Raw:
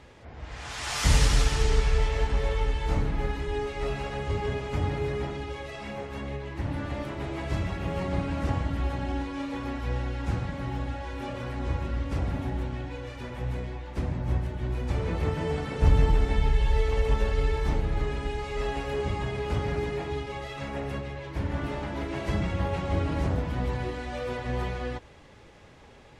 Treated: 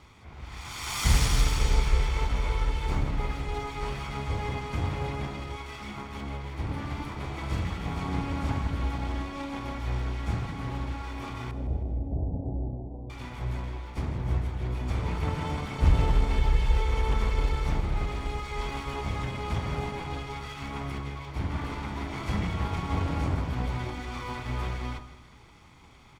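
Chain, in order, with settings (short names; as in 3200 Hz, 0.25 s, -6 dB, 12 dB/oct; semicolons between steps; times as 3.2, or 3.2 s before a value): minimum comb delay 0.88 ms; 11.51–13.1 steep low-pass 750 Hz 48 dB/oct; de-hum 47.48 Hz, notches 40; on a send: feedback echo 0.159 s, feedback 46%, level -15 dB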